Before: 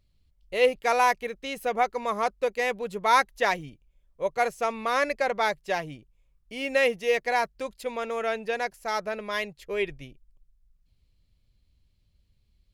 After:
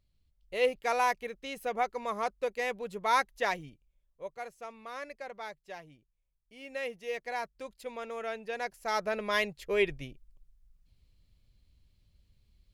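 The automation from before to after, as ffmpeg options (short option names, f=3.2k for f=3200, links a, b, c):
-af "volume=11.5dB,afade=t=out:st=3.65:d=0.76:silence=0.298538,afade=t=in:st=6.54:d=1.27:silence=0.398107,afade=t=in:st=8.49:d=0.82:silence=0.334965"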